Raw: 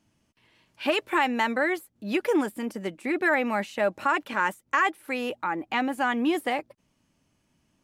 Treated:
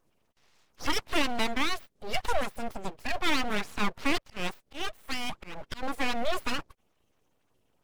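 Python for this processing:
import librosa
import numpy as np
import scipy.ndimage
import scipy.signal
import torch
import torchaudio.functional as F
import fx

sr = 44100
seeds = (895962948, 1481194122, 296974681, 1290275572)

y = fx.spec_quant(x, sr, step_db=30)
y = fx.auto_swell(y, sr, attack_ms=228.0, at=(4.18, 5.83))
y = np.abs(y)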